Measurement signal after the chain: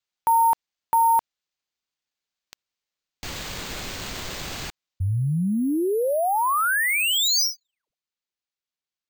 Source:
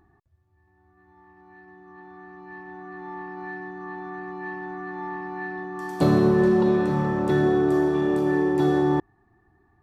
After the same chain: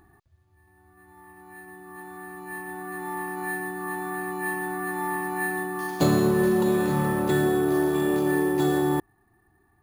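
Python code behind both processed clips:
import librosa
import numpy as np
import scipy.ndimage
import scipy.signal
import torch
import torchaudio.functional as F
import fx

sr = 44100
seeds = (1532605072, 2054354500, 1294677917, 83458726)

y = fx.high_shelf(x, sr, hz=2700.0, db=11.5)
y = fx.rider(y, sr, range_db=3, speed_s=0.5)
y = np.repeat(scipy.signal.resample_poly(y, 1, 4), 4)[:len(y)]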